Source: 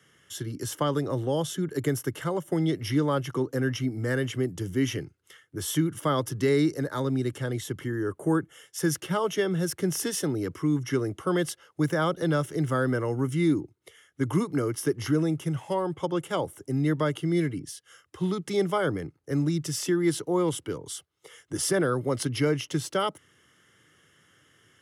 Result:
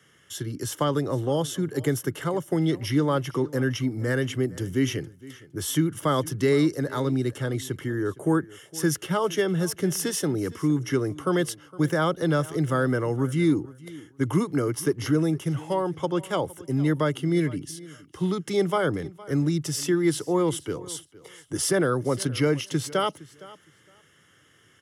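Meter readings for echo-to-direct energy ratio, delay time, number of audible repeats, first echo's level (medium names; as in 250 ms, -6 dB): -20.0 dB, 462 ms, 2, -20.0 dB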